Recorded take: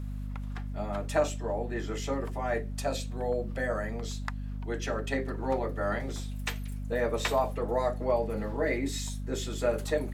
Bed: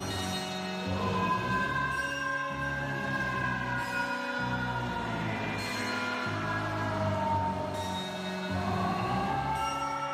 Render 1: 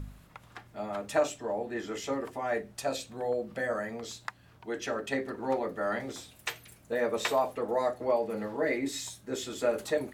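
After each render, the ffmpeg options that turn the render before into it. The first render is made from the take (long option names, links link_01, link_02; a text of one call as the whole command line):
ffmpeg -i in.wav -af "bandreject=frequency=50:width_type=h:width=4,bandreject=frequency=100:width_type=h:width=4,bandreject=frequency=150:width_type=h:width=4,bandreject=frequency=200:width_type=h:width=4,bandreject=frequency=250:width_type=h:width=4" out.wav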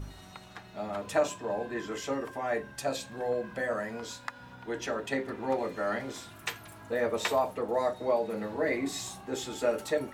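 ffmpeg -i in.wav -i bed.wav -filter_complex "[1:a]volume=-18dB[link_01];[0:a][link_01]amix=inputs=2:normalize=0" out.wav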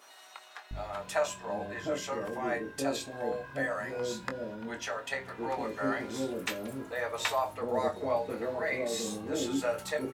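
ffmpeg -i in.wav -filter_complex "[0:a]asplit=2[link_01][link_02];[link_02]adelay=22,volume=-9dB[link_03];[link_01][link_03]amix=inputs=2:normalize=0,acrossover=split=520[link_04][link_05];[link_04]adelay=710[link_06];[link_06][link_05]amix=inputs=2:normalize=0" out.wav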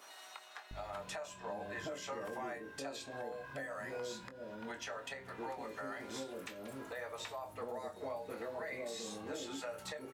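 ffmpeg -i in.wav -filter_complex "[0:a]acrossover=split=510|7300[link_01][link_02][link_03];[link_01]acompressor=threshold=-46dB:ratio=4[link_04];[link_02]acompressor=threshold=-39dB:ratio=4[link_05];[link_03]acompressor=threshold=-58dB:ratio=4[link_06];[link_04][link_05][link_06]amix=inputs=3:normalize=0,alimiter=level_in=9dB:limit=-24dB:level=0:latency=1:release=446,volume=-9dB" out.wav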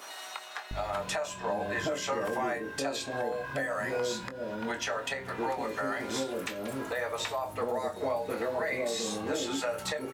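ffmpeg -i in.wav -af "volume=11dB" out.wav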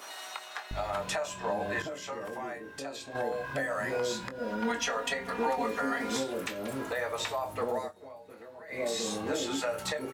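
ffmpeg -i in.wav -filter_complex "[0:a]asettb=1/sr,asplit=3[link_01][link_02][link_03];[link_01]atrim=end=4.384[link_04];[link_02]atrim=start=4.38:end=6.17,asetpts=PTS-STARTPTS,afade=type=in:duration=0.004:curve=qsin,afade=type=out:start_time=1.786:duration=0.004:curve=qsin,aecho=1:1:4.2:0.81,atrim=end_sample=78939[link_05];[link_03]atrim=start=6.166[link_06];[link_04][link_05]acrossfade=duration=0.004:curve1=hsin:curve2=qsin[link_07];[link_07][link_06]acrossfade=duration=0.004:curve1=qsin:curve2=hsin,asplit=5[link_08][link_09][link_10][link_11][link_12];[link_08]atrim=end=1.822[link_13];[link_09]atrim=start=1.818:end=3.152,asetpts=PTS-STARTPTS,volume=-7dB[link_14];[link_10]atrim=start=3.148:end=7.93,asetpts=PTS-STARTPTS,afade=type=out:start_time=4.632:duration=0.15:silence=0.149624[link_15];[link_11]atrim=start=7.93:end=8.68,asetpts=PTS-STARTPTS,volume=-16.5dB[link_16];[link_12]atrim=start=8.68,asetpts=PTS-STARTPTS,afade=type=in:duration=0.15:silence=0.149624[link_17];[link_13][link_14]acrossfade=duration=0.004:curve1=hsin:curve2=hsin[link_18];[link_15][link_16][link_17]concat=n=3:v=0:a=1[link_19];[link_18][link_19]acrossfade=duration=0.004:curve1=hsin:curve2=hsin" out.wav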